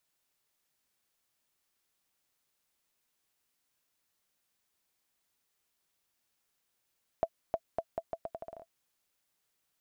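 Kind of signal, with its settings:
bouncing ball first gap 0.31 s, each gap 0.79, 664 Hz, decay 57 ms −17 dBFS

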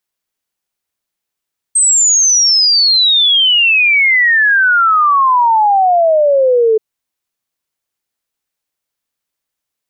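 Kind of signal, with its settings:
exponential sine sweep 8,400 Hz → 430 Hz 5.03 s −7 dBFS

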